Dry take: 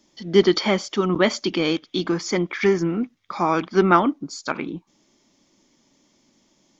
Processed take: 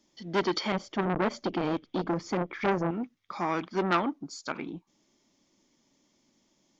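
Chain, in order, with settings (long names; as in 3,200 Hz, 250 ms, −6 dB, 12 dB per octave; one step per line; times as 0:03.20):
0:00.72–0:02.91: spectral tilt −3 dB per octave
saturating transformer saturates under 1,600 Hz
level −7.5 dB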